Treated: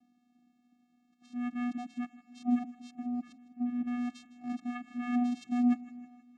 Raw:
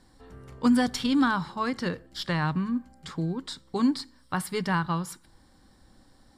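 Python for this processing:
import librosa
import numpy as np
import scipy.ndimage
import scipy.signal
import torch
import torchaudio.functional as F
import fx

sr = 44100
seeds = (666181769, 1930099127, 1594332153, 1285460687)

p1 = np.flip(x).copy()
p2 = fx.vocoder(p1, sr, bands=4, carrier='square', carrier_hz=244.0)
p3 = p2 + fx.echo_feedback(p2, sr, ms=158, feedback_pct=55, wet_db=-18, dry=0)
y = p3 * 10.0 ** (-5.5 / 20.0)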